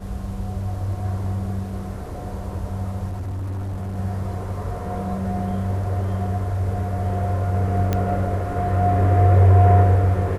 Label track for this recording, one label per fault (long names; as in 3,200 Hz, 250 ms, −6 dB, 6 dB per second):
3.080000	3.980000	clipping −25 dBFS
7.930000	7.930000	click −9 dBFS